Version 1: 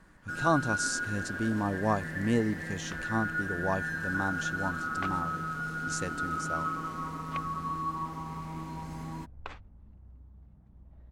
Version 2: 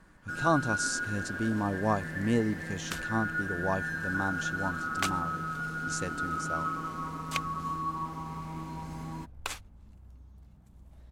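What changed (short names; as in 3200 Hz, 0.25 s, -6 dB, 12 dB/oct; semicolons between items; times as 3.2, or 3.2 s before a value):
second sound: remove tape spacing loss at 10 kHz 39 dB; master: add notch 1900 Hz, Q 23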